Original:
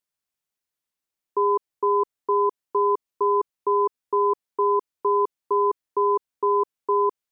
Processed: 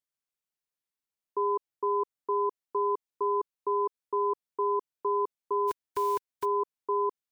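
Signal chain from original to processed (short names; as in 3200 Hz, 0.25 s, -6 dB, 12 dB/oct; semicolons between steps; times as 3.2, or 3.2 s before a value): 5.67–6.44 spectral whitening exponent 0.3; gain -7 dB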